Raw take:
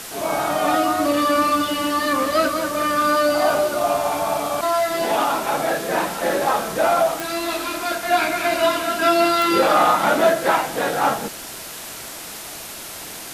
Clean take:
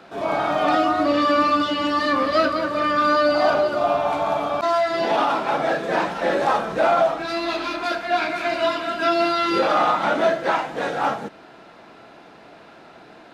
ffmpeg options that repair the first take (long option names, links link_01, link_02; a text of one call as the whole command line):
ffmpeg -i in.wav -af "adeclick=threshold=4,afwtdn=0.022,asetnsamples=nb_out_samples=441:pad=0,asendcmd='8.03 volume volume -3dB',volume=0dB" out.wav